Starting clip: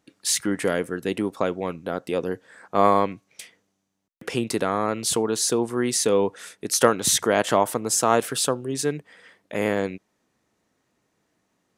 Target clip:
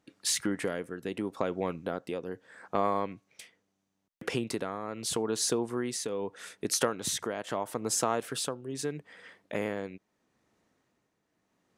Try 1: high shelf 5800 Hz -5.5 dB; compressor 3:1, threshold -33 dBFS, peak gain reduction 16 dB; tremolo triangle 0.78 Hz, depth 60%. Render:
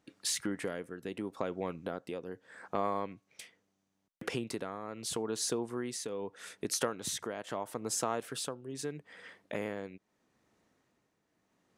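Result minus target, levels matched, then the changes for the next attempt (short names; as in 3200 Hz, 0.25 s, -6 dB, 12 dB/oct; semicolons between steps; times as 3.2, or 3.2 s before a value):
compressor: peak gain reduction +4.5 dB
change: compressor 3:1, threshold -26 dBFS, peak gain reduction 11.5 dB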